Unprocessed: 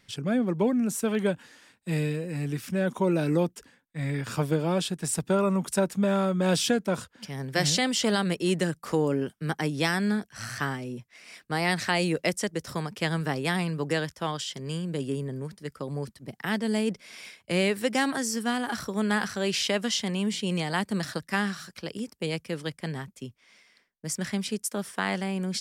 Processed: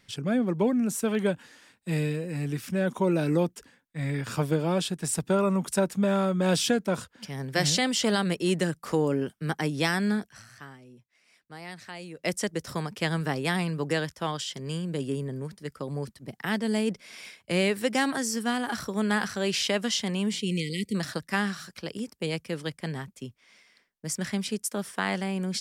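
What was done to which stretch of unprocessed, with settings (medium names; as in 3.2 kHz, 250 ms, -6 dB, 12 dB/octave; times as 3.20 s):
10.29–12.32 s: dip -15.5 dB, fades 0.14 s
20.39–20.95 s: brick-wall FIR band-stop 520–1900 Hz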